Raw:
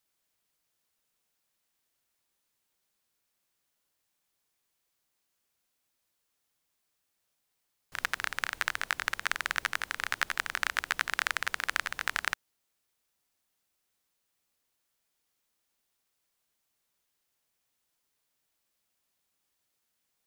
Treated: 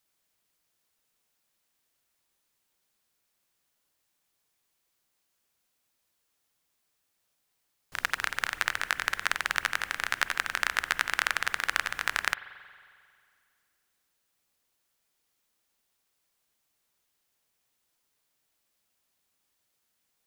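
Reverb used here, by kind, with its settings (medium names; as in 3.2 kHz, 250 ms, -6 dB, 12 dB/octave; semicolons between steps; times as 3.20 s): spring tank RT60 2.2 s, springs 45 ms, chirp 70 ms, DRR 14 dB; trim +2.5 dB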